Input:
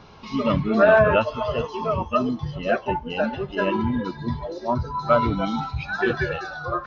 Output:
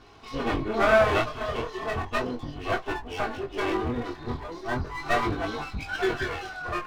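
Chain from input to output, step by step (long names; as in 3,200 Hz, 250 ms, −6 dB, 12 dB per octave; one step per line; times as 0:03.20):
lower of the sound and its delayed copy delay 2.7 ms
chorus effect 0.36 Hz, delay 19.5 ms, depth 5.9 ms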